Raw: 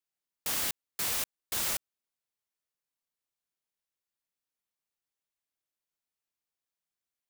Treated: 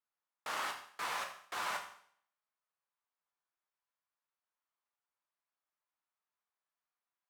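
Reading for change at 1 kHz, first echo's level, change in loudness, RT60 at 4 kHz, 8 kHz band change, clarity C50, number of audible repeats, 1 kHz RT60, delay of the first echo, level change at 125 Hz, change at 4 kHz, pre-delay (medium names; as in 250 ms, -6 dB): +6.0 dB, no echo, -8.5 dB, 0.60 s, -15.5 dB, 8.5 dB, no echo, 0.60 s, no echo, under -15 dB, -8.0 dB, 10 ms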